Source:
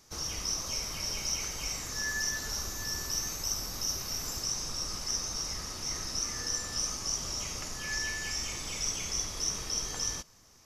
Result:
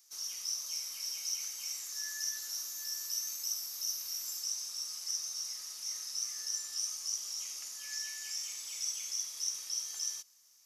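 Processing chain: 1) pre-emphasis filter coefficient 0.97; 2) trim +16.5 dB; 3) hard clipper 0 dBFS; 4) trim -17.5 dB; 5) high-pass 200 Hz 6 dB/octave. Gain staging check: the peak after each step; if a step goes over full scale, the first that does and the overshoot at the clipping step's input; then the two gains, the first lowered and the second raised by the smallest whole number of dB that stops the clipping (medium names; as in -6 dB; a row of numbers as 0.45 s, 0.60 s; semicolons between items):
-19.0 dBFS, -2.5 dBFS, -2.5 dBFS, -20.0 dBFS, -20.0 dBFS; nothing clips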